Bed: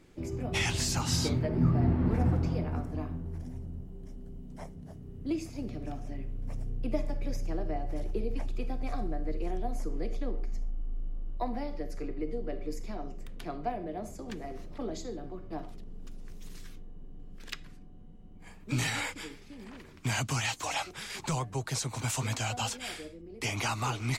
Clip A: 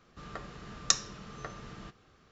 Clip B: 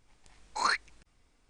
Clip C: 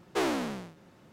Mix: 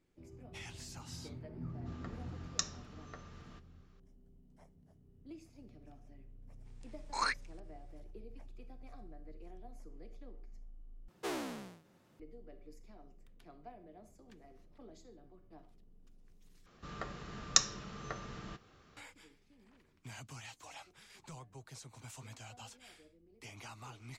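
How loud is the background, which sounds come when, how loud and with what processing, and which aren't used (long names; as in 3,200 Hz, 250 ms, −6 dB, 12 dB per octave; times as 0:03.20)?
bed −18.5 dB
0:01.69: mix in A −9.5 dB
0:06.57: mix in B −5.5 dB, fades 0.10 s
0:11.08: overwrite with C −10.5 dB + high-shelf EQ 6,800 Hz +7 dB
0:16.66: overwrite with A −0.5 dB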